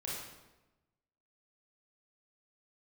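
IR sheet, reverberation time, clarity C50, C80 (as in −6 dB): 1.1 s, −0.5 dB, 3.0 dB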